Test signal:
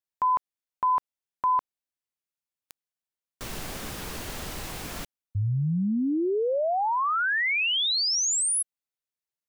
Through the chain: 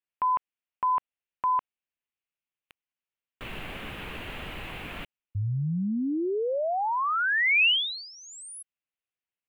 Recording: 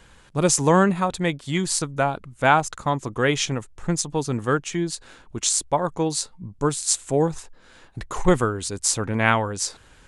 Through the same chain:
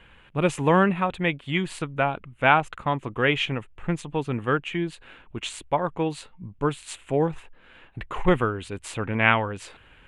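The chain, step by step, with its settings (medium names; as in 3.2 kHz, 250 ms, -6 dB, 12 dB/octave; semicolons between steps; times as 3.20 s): resonant high shelf 3.9 kHz -12.5 dB, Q 3; trim -2.5 dB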